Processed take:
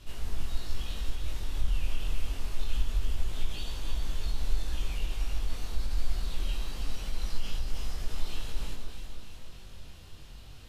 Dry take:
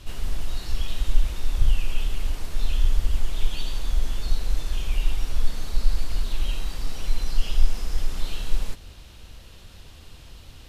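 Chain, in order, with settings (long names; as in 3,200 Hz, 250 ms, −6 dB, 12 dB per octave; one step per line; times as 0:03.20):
brickwall limiter −13 dBFS, peak gain reduction 9 dB
on a send: delay that swaps between a low-pass and a high-pass 158 ms, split 1,500 Hz, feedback 78%, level −5 dB
on the sum: chorus effect 0.25 Hz, delay 19 ms, depth 3.3 ms
level −3 dB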